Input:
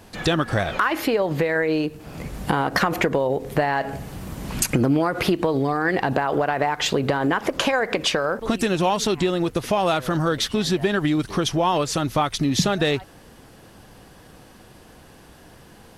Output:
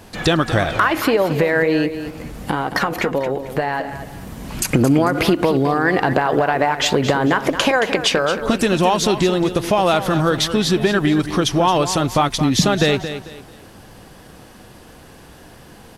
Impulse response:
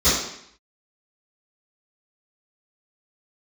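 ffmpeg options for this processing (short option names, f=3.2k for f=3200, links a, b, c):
-filter_complex "[0:a]asplit=3[a][b][c];[a]afade=t=out:st=2.09:d=0.02[d];[b]flanger=delay=2.5:depth=2.2:regen=74:speed=1.5:shape=triangular,afade=t=in:st=2.09:d=0.02,afade=t=out:st=4.64:d=0.02[e];[c]afade=t=in:st=4.64:d=0.02[f];[d][e][f]amix=inputs=3:normalize=0,aecho=1:1:223|446|669:0.282|0.0846|0.0254,volume=4.5dB"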